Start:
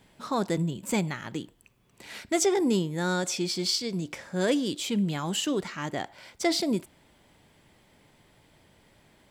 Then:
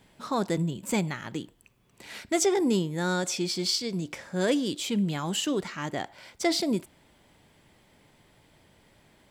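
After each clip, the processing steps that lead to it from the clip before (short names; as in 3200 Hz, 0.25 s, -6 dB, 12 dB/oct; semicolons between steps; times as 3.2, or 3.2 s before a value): nothing audible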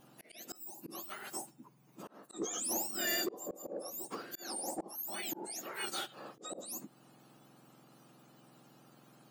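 spectrum mirrored in octaves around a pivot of 1600 Hz; auto swell 0.54 s; soft clip -28.5 dBFS, distortion -13 dB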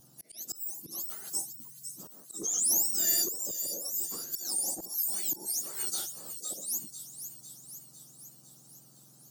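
EQ curve 110 Hz 0 dB, 250 Hz -9 dB, 2600 Hz -16 dB, 5700 Hz +5 dB; thin delay 0.503 s, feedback 61%, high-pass 3500 Hz, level -9 dB; gain +5.5 dB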